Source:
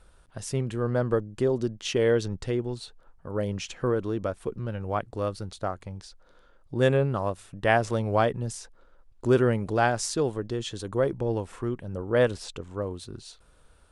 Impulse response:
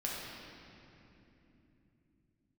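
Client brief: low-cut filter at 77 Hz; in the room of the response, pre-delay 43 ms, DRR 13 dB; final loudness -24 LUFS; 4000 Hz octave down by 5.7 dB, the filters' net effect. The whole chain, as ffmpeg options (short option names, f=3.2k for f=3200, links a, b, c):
-filter_complex "[0:a]highpass=77,equalizer=f=4k:t=o:g=-8,asplit=2[a][b];[1:a]atrim=start_sample=2205,adelay=43[c];[b][c]afir=irnorm=-1:irlink=0,volume=-16.5dB[d];[a][d]amix=inputs=2:normalize=0,volume=4dB"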